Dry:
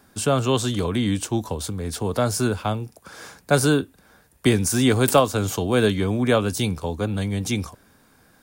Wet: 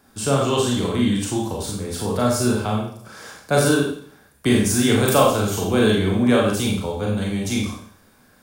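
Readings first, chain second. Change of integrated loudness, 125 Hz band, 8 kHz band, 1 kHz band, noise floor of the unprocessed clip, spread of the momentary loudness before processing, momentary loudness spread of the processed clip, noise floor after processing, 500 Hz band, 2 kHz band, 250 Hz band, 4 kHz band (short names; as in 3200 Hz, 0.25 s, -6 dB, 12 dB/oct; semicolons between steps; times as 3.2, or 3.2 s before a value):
+2.0 dB, +0.5 dB, +2.0 dB, +2.0 dB, -58 dBFS, 10 LU, 11 LU, -55 dBFS, +2.0 dB, +2.0 dB, +3.0 dB, +2.0 dB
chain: Schroeder reverb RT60 0.56 s, combs from 29 ms, DRR -2.5 dB; gain -2.5 dB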